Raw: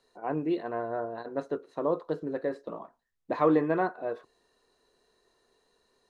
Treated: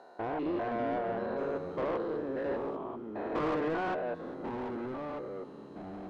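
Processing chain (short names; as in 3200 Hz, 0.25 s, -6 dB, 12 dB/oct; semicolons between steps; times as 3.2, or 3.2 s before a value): stepped spectrum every 0.2 s; overdrive pedal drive 24 dB, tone 1900 Hz, clips at -16.5 dBFS; echoes that change speed 0.22 s, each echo -4 st, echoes 3, each echo -6 dB; gain -8 dB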